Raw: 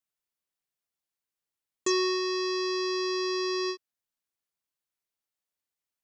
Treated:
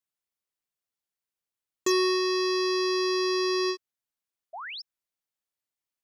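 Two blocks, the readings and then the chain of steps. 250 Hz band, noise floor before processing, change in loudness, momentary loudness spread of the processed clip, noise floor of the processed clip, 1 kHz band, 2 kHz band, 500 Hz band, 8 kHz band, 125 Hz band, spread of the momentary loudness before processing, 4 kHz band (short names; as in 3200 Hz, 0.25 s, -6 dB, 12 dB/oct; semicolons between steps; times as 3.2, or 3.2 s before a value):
+3.5 dB, under -85 dBFS, +3.0 dB, 14 LU, under -85 dBFS, +3.0 dB, +3.0 dB, +3.5 dB, +0.5 dB, n/a, 7 LU, +2.5 dB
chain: sample leveller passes 1; painted sound rise, 4.53–4.82, 610–5600 Hz -38 dBFS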